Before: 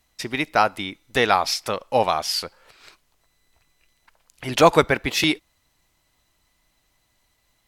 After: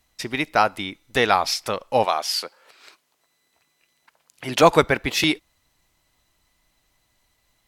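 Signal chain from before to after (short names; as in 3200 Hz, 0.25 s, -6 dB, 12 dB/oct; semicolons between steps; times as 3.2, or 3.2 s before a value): 2.04–4.61 HPF 370 Hz -> 120 Hz 12 dB/oct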